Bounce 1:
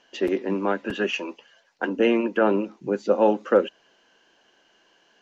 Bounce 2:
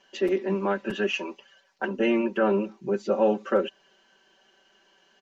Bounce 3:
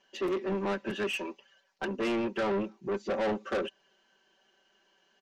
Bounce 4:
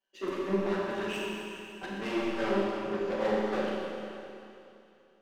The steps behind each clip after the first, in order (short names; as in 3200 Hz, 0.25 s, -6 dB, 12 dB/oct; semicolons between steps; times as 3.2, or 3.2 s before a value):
comb 5.2 ms, depth 95%; in parallel at -2 dB: limiter -14.5 dBFS, peak gain reduction 9.5 dB; on the sum: gain -9 dB
soft clip -28 dBFS, distortion -7 dB; upward expander 1.5:1, over -45 dBFS; gain +1.5 dB
chorus voices 2, 1.5 Hz, delay 13 ms, depth 3 ms; power-law curve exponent 1.4; Schroeder reverb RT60 2.8 s, combs from 29 ms, DRR -4 dB